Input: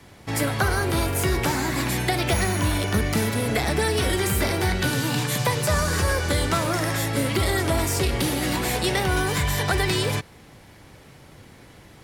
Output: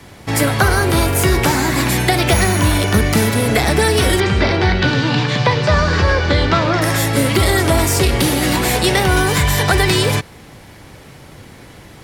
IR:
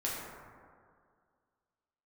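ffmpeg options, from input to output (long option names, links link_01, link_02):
-filter_complex "[0:a]asettb=1/sr,asplit=3[link_01][link_02][link_03];[link_01]atrim=end=4.204[link_04];[link_02]atrim=start=4.2:end=6.82,asetpts=PTS-STARTPTS,afade=type=in:duration=0.004:curve=qsin,afade=type=out:start_time=2.616:duration=0.004:curve=qsin,lowpass=frequency=4800:width=0.5412,lowpass=frequency=4800:width=1.3066[link_05];[link_03]atrim=start=6.816[link_06];[link_04][link_05]acrossfade=duration=0.004:curve1=hsin:curve2=qsin[link_07];[link_07][link_06]acrossfade=duration=0.004:curve1=qsin:curve2=hsin,volume=8.5dB"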